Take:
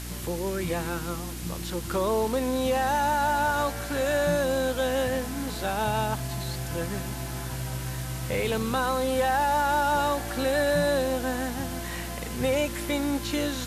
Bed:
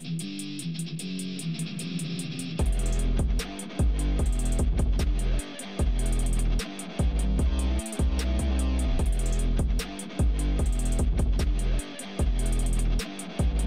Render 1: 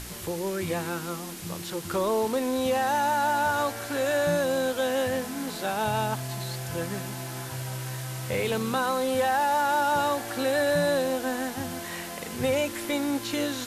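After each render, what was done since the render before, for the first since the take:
hum removal 60 Hz, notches 5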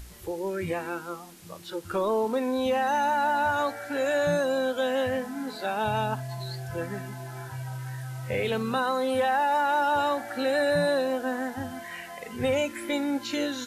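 noise reduction from a noise print 11 dB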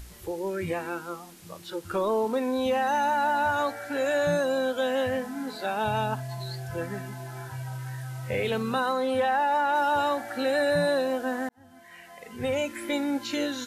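0:08.92–0:09.74: high-shelf EQ 7,900 Hz → 5,500 Hz −7.5 dB
0:11.49–0:12.85: fade in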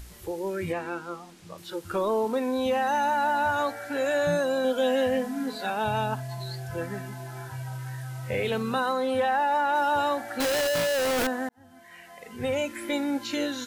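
0:00.72–0:01.58: high-frequency loss of the air 51 metres
0:04.64–0:05.70: comb filter 4.2 ms
0:10.40–0:11.27: sign of each sample alone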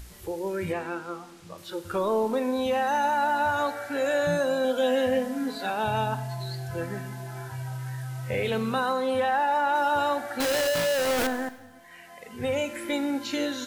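four-comb reverb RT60 1.1 s, combs from 32 ms, DRR 13 dB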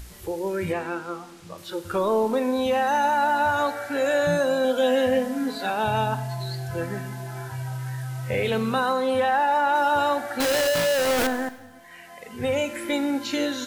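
level +3 dB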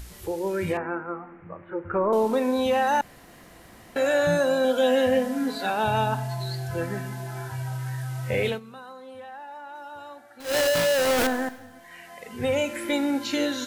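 0:00.77–0:02.13: Butterworth low-pass 2,200 Hz 48 dB per octave
0:03.01–0:03.96: fill with room tone
0:08.47–0:10.57: duck −19.5 dB, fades 0.13 s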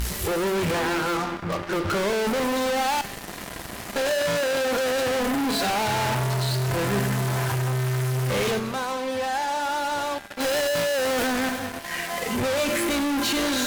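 fuzz pedal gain 45 dB, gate −48 dBFS
tuned comb filter 200 Hz, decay 0.96 s, mix 70%

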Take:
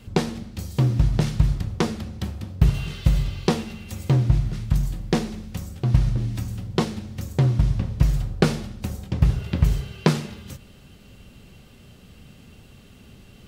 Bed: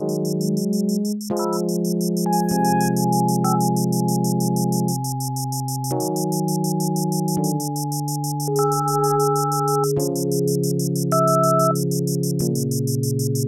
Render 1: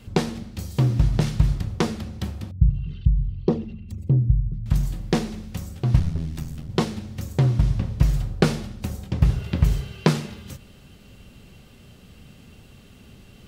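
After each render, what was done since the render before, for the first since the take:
0:02.51–0:04.66: spectral envelope exaggerated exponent 2
0:05.99–0:06.69: ring modulation 41 Hz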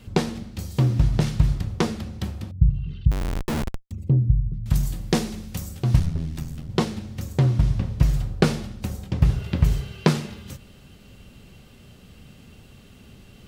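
0:03.11–0:03.91: comparator with hysteresis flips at −29 dBFS
0:04.64–0:06.06: high-shelf EQ 5,600 Hz +9 dB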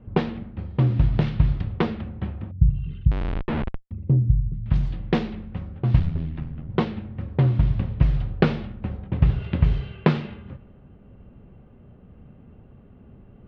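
low-pass filter 3,400 Hz 24 dB per octave
low-pass that shuts in the quiet parts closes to 870 Hz, open at −16.5 dBFS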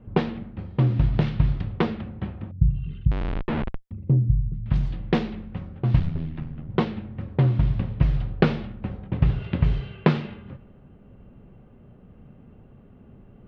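parametric band 71 Hz −6 dB 0.57 octaves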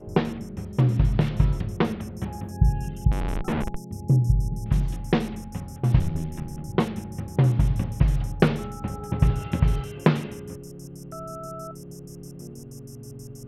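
mix in bed −19.5 dB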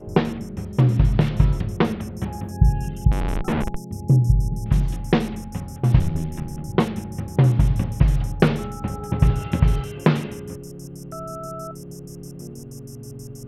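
level +3.5 dB
brickwall limiter −2 dBFS, peak gain reduction 2 dB

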